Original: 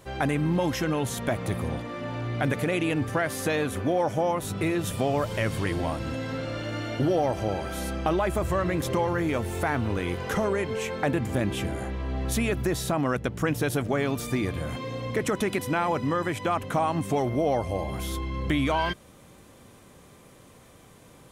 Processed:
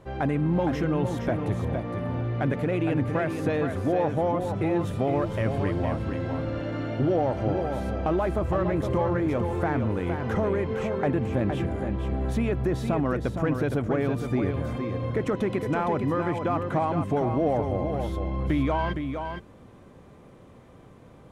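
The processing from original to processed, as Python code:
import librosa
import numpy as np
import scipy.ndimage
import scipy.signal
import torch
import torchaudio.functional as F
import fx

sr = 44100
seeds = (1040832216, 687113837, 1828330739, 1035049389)

p1 = fx.lowpass(x, sr, hz=1000.0, slope=6)
p2 = 10.0 ** (-30.5 / 20.0) * np.tanh(p1 / 10.0 ** (-30.5 / 20.0))
p3 = p1 + F.gain(torch.from_numpy(p2), -10.0).numpy()
y = p3 + 10.0 ** (-6.5 / 20.0) * np.pad(p3, (int(463 * sr / 1000.0), 0))[:len(p3)]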